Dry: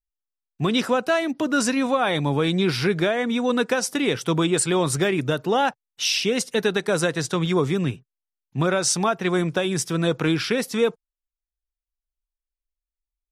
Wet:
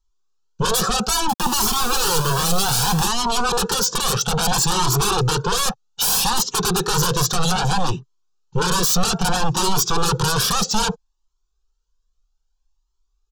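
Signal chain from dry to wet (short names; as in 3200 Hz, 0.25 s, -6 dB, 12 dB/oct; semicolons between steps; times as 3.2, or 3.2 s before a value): downsampling 16000 Hz; 1.29–3.03 requantised 6-bit, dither none; sine folder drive 18 dB, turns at -9 dBFS; fixed phaser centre 410 Hz, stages 8; cascading flanger rising 0.62 Hz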